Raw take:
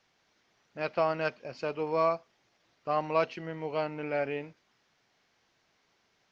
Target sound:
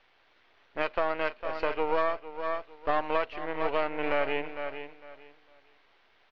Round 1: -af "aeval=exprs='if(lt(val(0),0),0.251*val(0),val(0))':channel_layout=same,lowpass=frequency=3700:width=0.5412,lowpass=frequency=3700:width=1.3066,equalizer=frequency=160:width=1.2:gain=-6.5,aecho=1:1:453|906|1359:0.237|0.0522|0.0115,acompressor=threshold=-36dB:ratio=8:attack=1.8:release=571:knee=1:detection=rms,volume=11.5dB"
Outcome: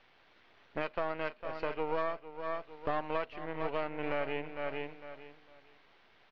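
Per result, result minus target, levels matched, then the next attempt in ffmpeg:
125 Hz band +8.0 dB; downward compressor: peak gain reduction +7 dB
-af "aeval=exprs='if(lt(val(0),0),0.251*val(0),val(0))':channel_layout=same,lowpass=frequency=3700:width=0.5412,lowpass=frequency=3700:width=1.3066,equalizer=frequency=160:width=1.2:gain=-16,aecho=1:1:453|906|1359:0.237|0.0522|0.0115,acompressor=threshold=-36dB:ratio=8:attack=1.8:release=571:knee=1:detection=rms,volume=11.5dB"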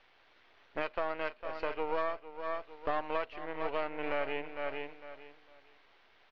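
downward compressor: peak gain reduction +6 dB
-af "aeval=exprs='if(lt(val(0),0),0.251*val(0),val(0))':channel_layout=same,lowpass=frequency=3700:width=0.5412,lowpass=frequency=3700:width=1.3066,equalizer=frequency=160:width=1.2:gain=-16,aecho=1:1:453|906|1359:0.237|0.0522|0.0115,acompressor=threshold=-29dB:ratio=8:attack=1.8:release=571:knee=1:detection=rms,volume=11.5dB"

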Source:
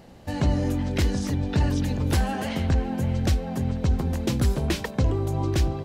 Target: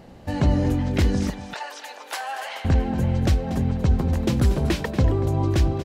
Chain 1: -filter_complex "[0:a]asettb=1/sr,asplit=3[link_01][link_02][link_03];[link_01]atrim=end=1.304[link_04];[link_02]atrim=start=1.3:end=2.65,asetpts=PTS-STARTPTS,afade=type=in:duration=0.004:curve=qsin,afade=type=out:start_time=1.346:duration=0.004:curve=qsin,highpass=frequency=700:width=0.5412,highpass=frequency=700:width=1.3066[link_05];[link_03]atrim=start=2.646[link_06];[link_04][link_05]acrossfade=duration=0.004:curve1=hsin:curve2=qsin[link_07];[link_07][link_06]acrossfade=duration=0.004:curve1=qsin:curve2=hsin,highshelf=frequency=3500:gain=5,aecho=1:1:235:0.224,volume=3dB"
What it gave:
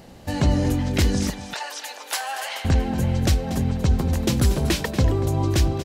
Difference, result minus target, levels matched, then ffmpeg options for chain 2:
8,000 Hz band +8.5 dB
-filter_complex "[0:a]asettb=1/sr,asplit=3[link_01][link_02][link_03];[link_01]atrim=end=1.304[link_04];[link_02]atrim=start=1.3:end=2.65,asetpts=PTS-STARTPTS,afade=type=in:duration=0.004:curve=qsin,afade=type=out:start_time=1.346:duration=0.004:curve=qsin,highpass=frequency=700:width=0.5412,highpass=frequency=700:width=1.3066[link_05];[link_03]atrim=start=2.646[link_06];[link_04][link_05]acrossfade=duration=0.004:curve1=hsin:curve2=qsin[link_07];[link_07][link_06]acrossfade=duration=0.004:curve1=qsin:curve2=hsin,highshelf=frequency=3500:gain=-5.5,aecho=1:1:235:0.224,volume=3dB"

